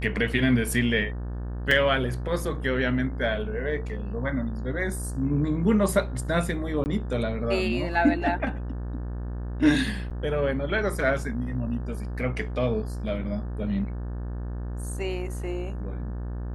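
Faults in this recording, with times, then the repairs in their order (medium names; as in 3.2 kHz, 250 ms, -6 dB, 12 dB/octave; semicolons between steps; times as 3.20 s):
buzz 60 Hz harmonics 30 -32 dBFS
1.71 s: dropout 3.9 ms
6.84–6.86 s: dropout 19 ms
10.10–10.11 s: dropout 7.7 ms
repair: de-hum 60 Hz, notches 30; interpolate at 1.71 s, 3.9 ms; interpolate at 6.84 s, 19 ms; interpolate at 10.10 s, 7.7 ms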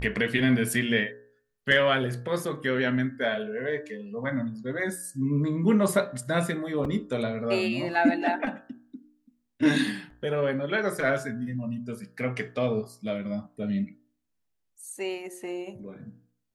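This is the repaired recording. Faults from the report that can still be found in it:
nothing left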